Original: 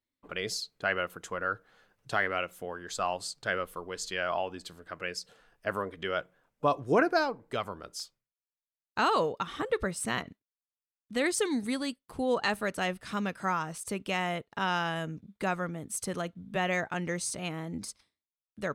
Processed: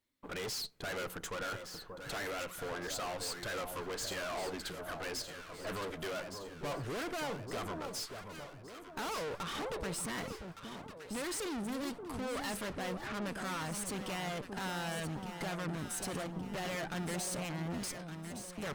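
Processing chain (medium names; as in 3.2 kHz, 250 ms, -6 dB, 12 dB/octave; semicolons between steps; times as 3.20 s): 12.64–13.22 s: low-pass 2.4 kHz 24 dB/octave; in parallel at +1 dB: peak limiter -25 dBFS, peak gain reduction 11 dB; on the sum: valve stage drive 40 dB, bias 0.7; echo whose repeats swap between lows and highs 583 ms, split 1.1 kHz, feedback 69%, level -6 dB; trim +2.5 dB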